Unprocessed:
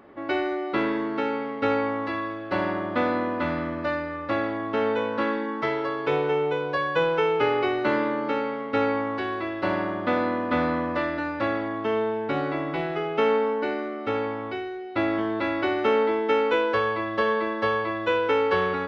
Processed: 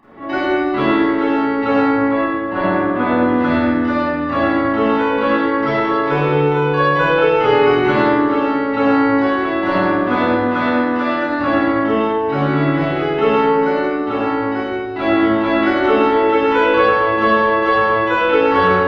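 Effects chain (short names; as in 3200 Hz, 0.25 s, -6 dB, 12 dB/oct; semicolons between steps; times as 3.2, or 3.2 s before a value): 1.77–3.24 air absorption 250 m; 10.2–11.29 HPF 380 Hz 6 dB/oct; reverb RT60 1.4 s, pre-delay 29 ms, DRR -12 dB; gain -5.5 dB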